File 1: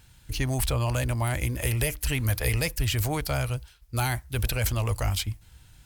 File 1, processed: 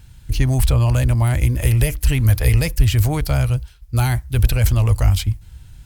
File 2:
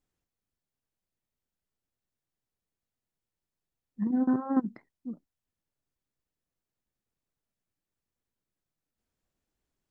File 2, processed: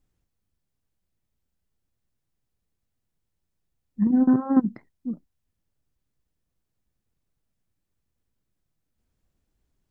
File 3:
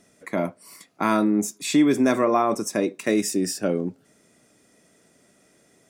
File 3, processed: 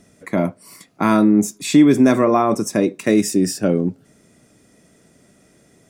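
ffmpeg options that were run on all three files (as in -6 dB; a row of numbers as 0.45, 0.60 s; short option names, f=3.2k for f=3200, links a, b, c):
-af "lowshelf=f=200:g=11.5,volume=3dB"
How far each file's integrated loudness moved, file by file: +9.5, +7.0, +6.0 LU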